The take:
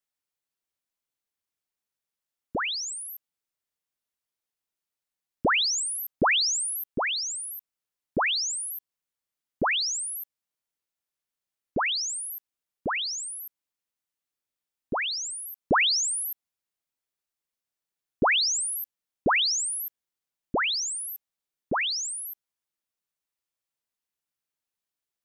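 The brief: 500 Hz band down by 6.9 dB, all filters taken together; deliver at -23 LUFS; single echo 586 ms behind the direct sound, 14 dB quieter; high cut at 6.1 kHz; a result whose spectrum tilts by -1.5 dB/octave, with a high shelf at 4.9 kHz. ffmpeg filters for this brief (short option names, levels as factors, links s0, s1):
-af "lowpass=6100,equalizer=f=500:t=o:g=-9,highshelf=f=4900:g=-7.5,aecho=1:1:586:0.2,volume=2.24"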